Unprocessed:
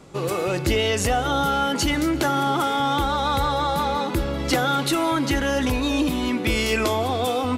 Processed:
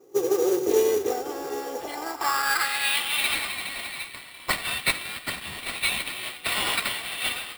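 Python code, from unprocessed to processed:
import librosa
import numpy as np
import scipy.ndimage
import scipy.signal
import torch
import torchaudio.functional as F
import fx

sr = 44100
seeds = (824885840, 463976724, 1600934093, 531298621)

y = np.minimum(x, 2.0 * 10.0 ** (-24.0 / 20.0) - x)
y = fx.peak_eq(y, sr, hz=840.0, db=-11.5, octaves=2.9, at=(3.47, 5.66))
y = fx.echo_tape(y, sr, ms=91, feedback_pct=88, wet_db=-12.0, lp_hz=5900.0, drive_db=16.0, wow_cents=37)
y = fx.filter_sweep_bandpass(y, sr, from_hz=410.0, to_hz=4300.0, start_s=1.56, end_s=3.29, q=3.1)
y = fx.tilt_eq(y, sr, slope=2.0)
y = fx.notch(y, sr, hz=4700.0, q=14.0)
y = y + 0.62 * np.pad(y, (int(2.5 * sr / 1000.0), 0))[:len(y)]
y = fx.sample_hold(y, sr, seeds[0], rate_hz=6300.0, jitter_pct=0)
y = fx.mod_noise(y, sr, seeds[1], snr_db=18)
y = fx.upward_expand(y, sr, threshold_db=-43.0, expansion=1.5)
y = y * 10.0 ** (9.0 / 20.0)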